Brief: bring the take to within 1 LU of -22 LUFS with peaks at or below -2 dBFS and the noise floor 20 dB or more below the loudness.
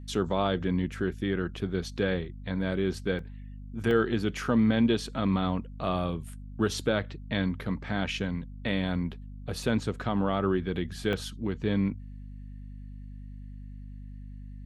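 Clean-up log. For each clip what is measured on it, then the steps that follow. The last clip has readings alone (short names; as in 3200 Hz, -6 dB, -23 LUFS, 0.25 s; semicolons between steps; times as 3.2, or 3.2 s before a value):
dropouts 4; longest dropout 2.1 ms; hum 50 Hz; harmonics up to 250 Hz; hum level -40 dBFS; loudness -29.5 LUFS; peak -12.5 dBFS; loudness target -22.0 LUFS
-> interpolate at 3.19/3.91/9.63/11.13, 2.1 ms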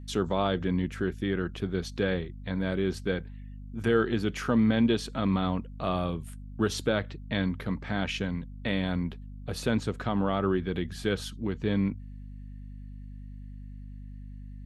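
dropouts 0; hum 50 Hz; harmonics up to 250 Hz; hum level -40 dBFS
-> de-hum 50 Hz, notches 5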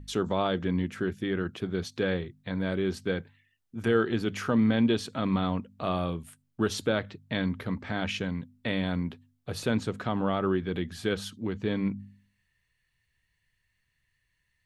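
hum none; loudness -30.0 LUFS; peak -12.5 dBFS; loudness target -22.0 LUFS
-> gain +8 dB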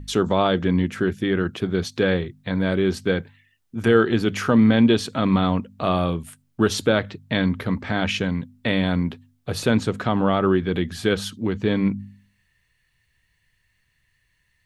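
loudness -22.0 LUFS; peak -4.5 dBFS; noise floor -68 dBFS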